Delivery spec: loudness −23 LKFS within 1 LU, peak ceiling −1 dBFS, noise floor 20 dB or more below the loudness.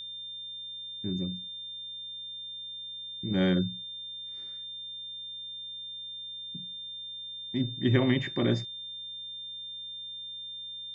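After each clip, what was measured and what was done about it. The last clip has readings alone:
mains hum 60 Hz; hum harmonics up to 180 Hz; level of the hum −56 dBFS; interfering tone 3,600 Hz; level of the tone −38 dBFS; integrated loudness −33.5 LKFS; sample peak −11.5 dBFS; target loudness −23.0 LKFS
→ hum removal 60 Hz, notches 3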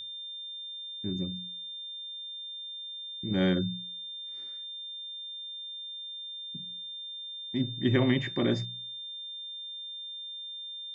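mains hum none found; interfering tone 3,600 Hz; level of the tone −38 dBFS
→ notch filter 3,600 Hz, Q 30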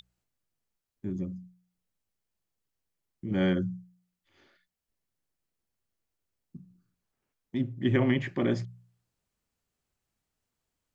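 interfering tone none found; integrated loudness −30.0 LKFS; sample peak −12.5 dBFS; target loudness −23.0 LKFS
→ level +7 dB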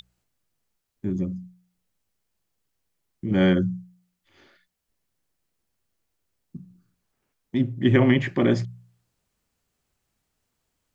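integrated loudness −23.0 LKFS; sample peak −5.5 dBFS; background noise floor −78 dBFS

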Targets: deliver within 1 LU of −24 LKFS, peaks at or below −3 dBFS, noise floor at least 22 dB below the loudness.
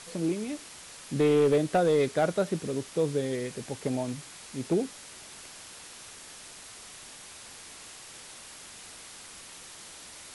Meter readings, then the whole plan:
share of clipped samples 0.4%; peaks flattened at −17.5 dBFS; background noise floor −47 dBFS; target noise floor −51 dBFS; integrated loudness −28.5 LKFS; sample peak −17.5 dBFS; target loudness −24.0 LKFS
→ clipped peaks rebuilt −17.5 dBFS
noise reduction from a noise print 6 dB
level +4.5 dB

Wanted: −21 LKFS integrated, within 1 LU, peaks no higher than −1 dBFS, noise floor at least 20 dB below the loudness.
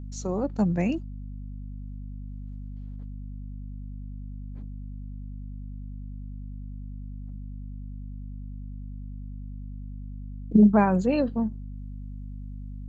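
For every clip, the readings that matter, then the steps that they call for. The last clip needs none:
mains hum 50 Hz; hum harmonics up to 250 Hz; level of the hum −35 dBFS; integrated loudness −23.5 LKFS; sample peak −7.0 dBFS; target loudness −21.0 LKFS
→ mains-hum notches 50/100/150/200/250 Hz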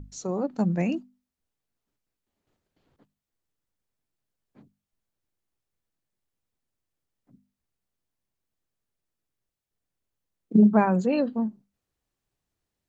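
mains hum none found; integrated loudness −24.0 LKFS; sample peak −9.0 dBFS; target loudness −21.0 LKFS
→ level +3 dB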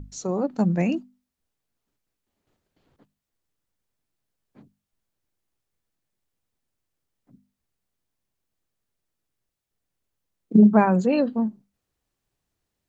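integrated loudness −21.0 LKFS; sample peak −6.0 dBFS; background noise floor −83 dBFS

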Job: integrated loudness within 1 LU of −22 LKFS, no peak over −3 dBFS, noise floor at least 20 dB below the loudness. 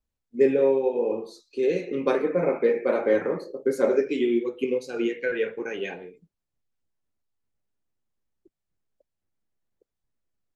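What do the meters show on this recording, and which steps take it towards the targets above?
integrated loudness −25.0 LKFS; sample peak −8.0 dBFS; target loudness −22.0 LKFS
→ level +3 dB

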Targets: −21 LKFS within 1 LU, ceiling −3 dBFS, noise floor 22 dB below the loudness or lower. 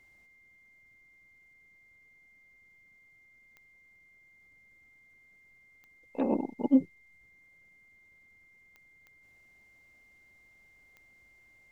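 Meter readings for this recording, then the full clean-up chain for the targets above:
number of clicks 5; interfering tone 2,100 Hz; level of the tone −59 dBFS; integrated loudness −29.5 LKFS; sample peak −12.0 dBFS; target loudness −21.0 LKFS
→ click removal
notch filter 2,100 Hz, Q 30
level +8.5 dB

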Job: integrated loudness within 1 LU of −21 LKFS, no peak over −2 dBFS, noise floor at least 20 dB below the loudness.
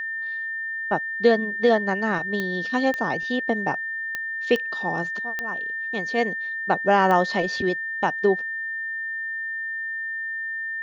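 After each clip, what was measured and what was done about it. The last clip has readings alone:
number of clicks 6; interfering tone 1,800 Hz; level of the tone −27 dBFS; integrated loudness −24.5 LKFS; sample peak −6.0 dBFS; target loudness −21.0 LKFS
→ click removal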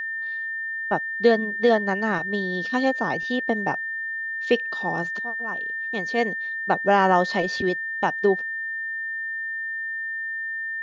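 number of clicks 0; interfering tone 1,800 Hz; level of the tone −27 dBFS
→ notch filter 1,800 Hz, Q 30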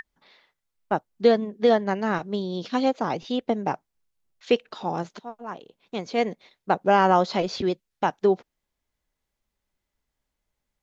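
interfering tone none found; integrated loudness −24.5 LKFS; sample peak −6.0 dBFS; target loudness −21.0 LKFS
→ level +3.5 dB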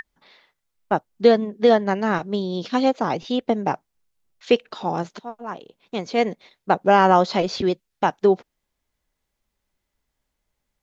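integrated loudness −21.0 LKFS; sample peak −2.5 dBFS; background noise floor −79 dBFS

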